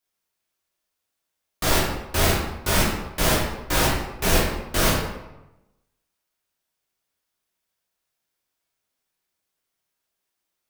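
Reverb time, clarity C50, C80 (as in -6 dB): 1.0 s, 1.5 dB, 4.5 dB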